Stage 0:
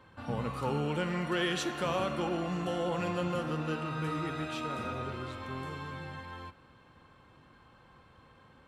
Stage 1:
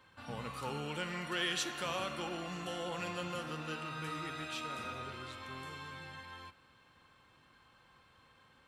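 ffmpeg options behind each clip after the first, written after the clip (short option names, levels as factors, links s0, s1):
-af "tiltshelf=f=1300:g=-6,volume=0.631"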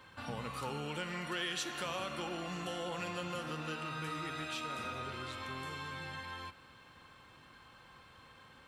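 -af "acompressor=threshold=0.00398:ratio=2,volume=2.11"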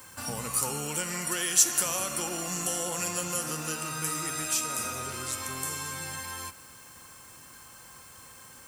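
-af "aexciter=amount=5.7:drive=9.6:freq=5500,volume=1.68"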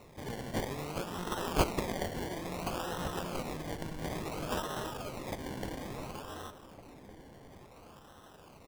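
-filter_complex "[0:a]acrusher=samples=27:mix=1:aa=0.000001:lfo=1:lforange=16.2:lforate=0.58,asplit=2[s0][s1];[s1]adelay=1458,volume=0.224,highshelf=f=4000:g=-32.8[s2];[s0][s2]amix=inputs=2:normalize=0,volume=0.531"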